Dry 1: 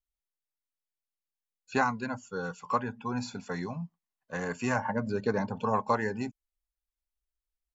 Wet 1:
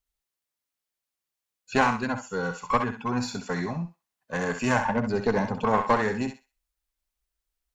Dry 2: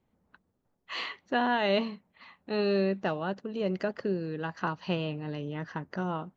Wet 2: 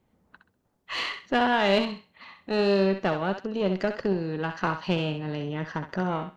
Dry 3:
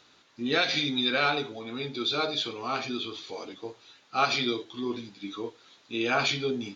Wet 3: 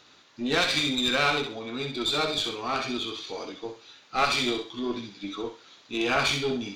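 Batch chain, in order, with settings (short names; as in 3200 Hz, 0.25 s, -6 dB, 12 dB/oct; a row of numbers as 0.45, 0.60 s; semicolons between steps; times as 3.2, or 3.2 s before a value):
one diode to ground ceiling -27 dBFS; on a send: thinning echo 65 ms, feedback 27%, high-pass 860 Hz, level -6 dB; on the sum: match loudness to -27 LUFS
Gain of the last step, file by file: +6.5, +5.5, +3.0 dB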